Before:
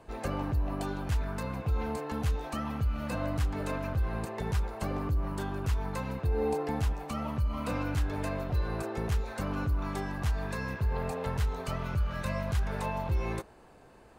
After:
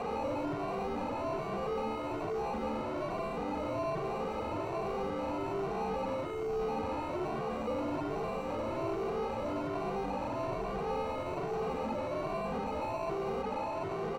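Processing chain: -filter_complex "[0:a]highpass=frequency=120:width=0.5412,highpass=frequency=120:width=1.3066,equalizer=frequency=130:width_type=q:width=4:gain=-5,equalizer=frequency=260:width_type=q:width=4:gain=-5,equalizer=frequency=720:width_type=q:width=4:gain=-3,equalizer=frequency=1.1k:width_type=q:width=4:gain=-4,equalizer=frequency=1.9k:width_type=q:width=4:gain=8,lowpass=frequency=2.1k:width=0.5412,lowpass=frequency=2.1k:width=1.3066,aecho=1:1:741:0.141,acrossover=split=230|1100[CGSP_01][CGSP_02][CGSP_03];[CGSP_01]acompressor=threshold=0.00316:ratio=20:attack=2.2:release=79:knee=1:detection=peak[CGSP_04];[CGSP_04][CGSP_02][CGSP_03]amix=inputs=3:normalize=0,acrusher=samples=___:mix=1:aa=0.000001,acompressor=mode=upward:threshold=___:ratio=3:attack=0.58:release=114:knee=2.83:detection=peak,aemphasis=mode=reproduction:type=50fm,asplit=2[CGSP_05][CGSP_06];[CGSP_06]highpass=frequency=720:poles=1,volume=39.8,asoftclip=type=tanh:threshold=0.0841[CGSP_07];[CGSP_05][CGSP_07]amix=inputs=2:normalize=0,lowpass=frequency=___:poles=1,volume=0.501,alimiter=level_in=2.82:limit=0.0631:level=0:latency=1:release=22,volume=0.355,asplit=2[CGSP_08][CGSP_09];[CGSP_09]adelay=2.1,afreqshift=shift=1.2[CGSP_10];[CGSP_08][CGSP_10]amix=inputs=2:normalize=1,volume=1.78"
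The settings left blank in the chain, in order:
26, 0.0112, 1.1k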